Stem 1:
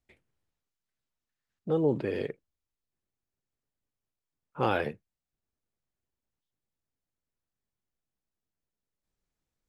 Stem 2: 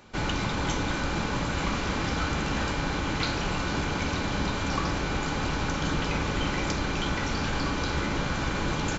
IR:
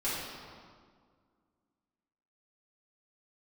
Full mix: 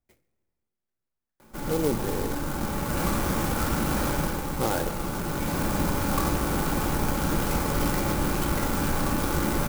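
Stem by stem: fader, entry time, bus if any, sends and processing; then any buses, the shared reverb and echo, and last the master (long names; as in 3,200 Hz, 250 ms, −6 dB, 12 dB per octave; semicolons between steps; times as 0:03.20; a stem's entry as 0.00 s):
0.0 dB, 0.00 s, send −20.5 dB, no processing
+0.5 dB, 1.40 s, send −10.5 dB, automatic ducking −18 dB, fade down 0.30 s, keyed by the first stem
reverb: on, RT60 1.9 s, pre-delay 3 ms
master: high-shelf EQ 3,200 Hz −9 dB; converter with an unsteady clock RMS 0.078 ms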